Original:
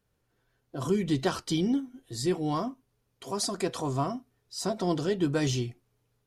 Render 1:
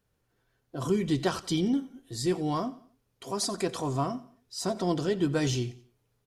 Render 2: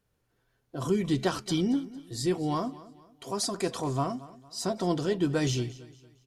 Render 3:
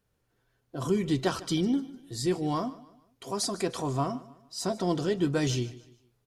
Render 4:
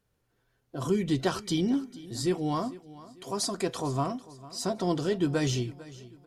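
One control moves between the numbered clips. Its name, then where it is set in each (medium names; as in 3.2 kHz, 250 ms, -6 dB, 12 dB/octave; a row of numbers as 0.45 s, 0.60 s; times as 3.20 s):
feedback delay, time: 89 ms, 228 ms, 150 ms, 449 ms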